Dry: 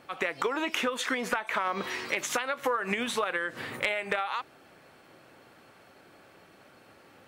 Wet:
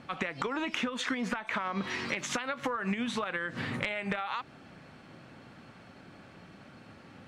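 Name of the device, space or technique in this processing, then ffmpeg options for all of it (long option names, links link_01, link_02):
jukebox: -af "lowpass=6500,lowshelf=frequency=290:width_type=q:width=1.5:gain=7.5,acompressor=threshold=-32dB:ratio=4,volume=2dB"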